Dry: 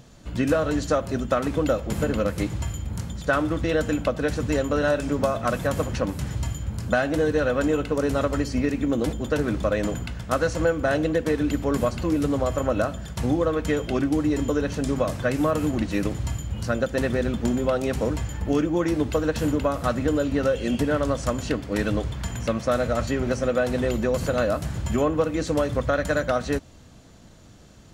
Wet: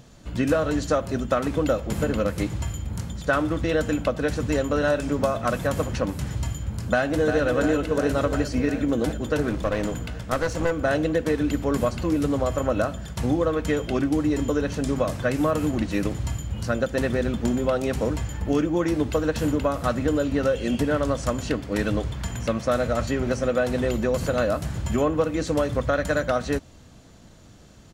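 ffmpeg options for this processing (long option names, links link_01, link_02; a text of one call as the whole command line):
ffmpeg -i in.wav -filter_complex "[0:a]asplit=2[link_01][link_02];[link_02]afade=type=in:start_time=6.74:duration=0.01,afade=type=out:start_time=7.42:duration=0.01,aecho=0:1:350|700|1050|1400|1750|2100|2450|2800|3150|3500|3850|4200:0.446684|0.335013|0.25126|0.188445|0.141333|0.106|0.0795001|0.0596251|0.0447188|0.0335391|0.0251543|0.0188657[link_03];[link_01][link_03]amix=inputs=2:normalize=0,asettb=1/sr,asplit=3[link_04][link_05][link_06];[link_04]atrim=end=9.494[link_07];[link_05]atrim=start=9.49:end=10.71,asetpts=PTS-STARTPTS,afade=type=in:duration=0.004:curve=qsin,afade=type=out:start_time=1.216:duration=0.004:curve=qsin,aeval=exprs='clip(val(0),-1,0.0447)':channel_layout=same[link_08];[link_06]atrim=start=10.706[link_09];[link_07][link_08]acrossfade=duration=0.004:curve1=hsin:curve2=qsin[link_10];[link_10][link_09]acrossfade=duration=0.004:curve1=qsin:curve2=hsin" out.wav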